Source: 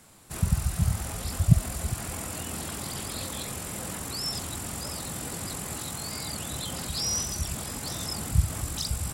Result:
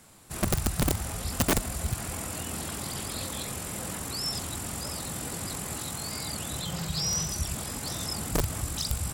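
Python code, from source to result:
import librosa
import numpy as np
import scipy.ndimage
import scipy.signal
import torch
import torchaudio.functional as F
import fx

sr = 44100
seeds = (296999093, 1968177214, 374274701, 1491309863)

y = fx.graphic_eq_31(x, sr, hz=(160, 250, 10000), db=(12, -10, -9), at=(6.61, 7.29))
y = (np.mod(10.0 ** (18.0 / 20.0) * y + 1.0, 2.0) - 1.0) / 10.0 ** (18.0 / 20.0)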